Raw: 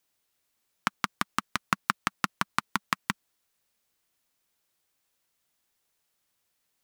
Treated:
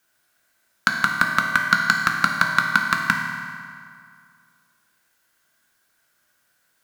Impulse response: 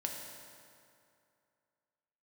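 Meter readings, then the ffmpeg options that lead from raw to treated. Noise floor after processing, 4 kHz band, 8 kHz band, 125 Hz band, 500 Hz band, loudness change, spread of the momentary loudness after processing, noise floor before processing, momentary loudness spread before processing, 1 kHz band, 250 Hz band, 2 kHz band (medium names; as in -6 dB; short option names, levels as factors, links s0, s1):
-68 dBFS, +8.0 dB, +5.5 dB, +9.0 dB, +8.0 dB, +11.5 dB, 13 LU, -77 dBFS, 5 LU, +9.0 dB, +6.5 dB, +16.0 dB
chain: -filter_complex "[0:a]equalizer=f=1500:t=o:w=0.34:g=15,asplit=2[s0][s1];[s1]aeval=exprs='1.12*sin(PI/2*3.16*val(0)/1.12)':c=same,volume=0.355[s2];[s0][s2]amix=inputs=2:normalize=0[s3];[1:a]atrim=start_sample=2205,asetrate=48510,aresample=44100[s4];[s3][s4]afir=irnorm=-1:irlink=0"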